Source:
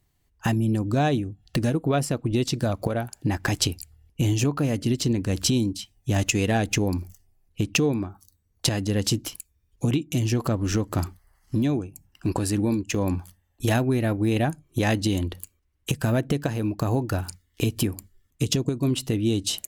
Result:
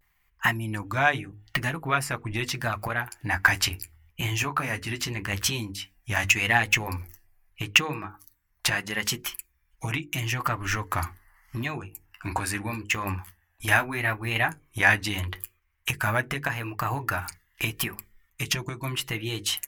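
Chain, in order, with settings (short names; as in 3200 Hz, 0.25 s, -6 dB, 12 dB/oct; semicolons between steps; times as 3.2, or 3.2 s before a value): graphic EQ 125/250/500/1000/2000/4000/8000 Hz -5/-10/-9/+7/+11/-8/-9 dB; flange 0.11 Hz, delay 4.9 ms, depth 6.8 ms, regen -38%; high shelf 2700 Hz +8 dB; notches 50/100/150/200/250/300/350/400/450/500 Hz; vibrato 0.79 Hz 80 cents; gain +3.5 dB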